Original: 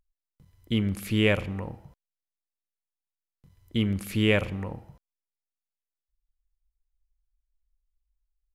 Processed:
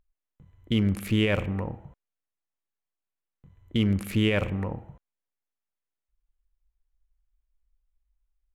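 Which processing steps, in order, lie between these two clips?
local Wiener filter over 9 samples; peak limiter -17.5 dBFS, peak gain reduction 9.5 dB; trim +3.5 dB

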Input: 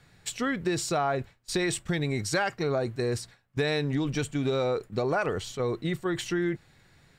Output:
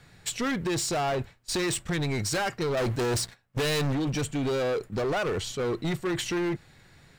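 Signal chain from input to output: 2.77–3.93 s: waveshaping leveller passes 2; hard clipper -29 dBFS, distortion -7 dB; trim +4 dB

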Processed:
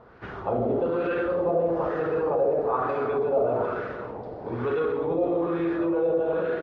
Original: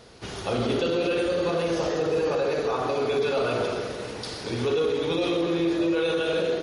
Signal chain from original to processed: LFO low-pass sine 1.1 Hz 670–1600 Hz; speakerphone echo 200 ms, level -24 dB; trim -2.5 dB

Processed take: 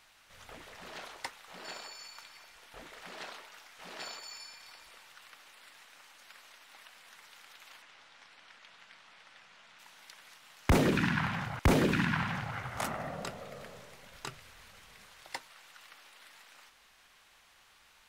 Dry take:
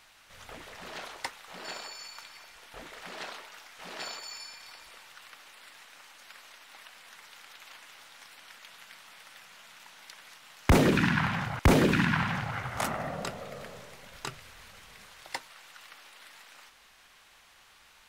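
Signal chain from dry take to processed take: 7.82–9.79 s: distance through air 86 m; trim -4 dB

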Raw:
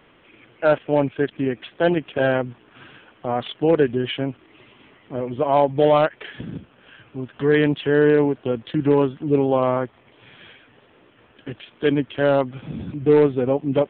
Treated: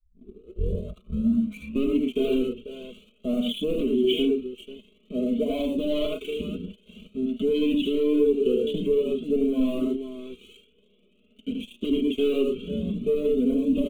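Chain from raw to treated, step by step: tape start-up on the opening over 2.22 s; peaking EQ 200 Hz +9.5 dB 0.63 oct; multi-tap echo 47/77/111/490 ms -16.5/-3.5/-9/-15 dB; waveshaping leveller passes 2; Chebyshev band-stop 1–3 kHz, order 2; static phaser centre 2.2 kHz, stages 4; comb 4.7 ms, depth 75%; compression, threshold -11 dBFS, peak gain reduction 6.5 dB; static phaser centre 340 Hz, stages 4; Shepard-style flanger rising 0.5 Hz

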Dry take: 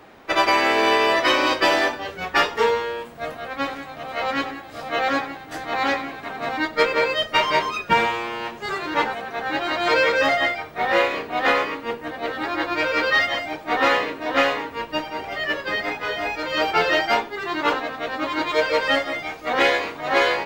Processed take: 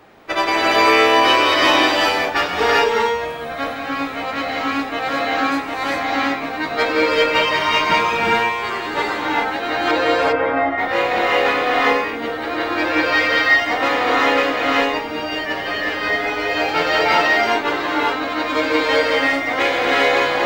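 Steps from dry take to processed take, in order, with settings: 9.91–10.78 s: low-pass 1.3 kHz 12 dB/octave; gated-style reverb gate 430 ms rising, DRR -4.5 dB; trim -1 dB

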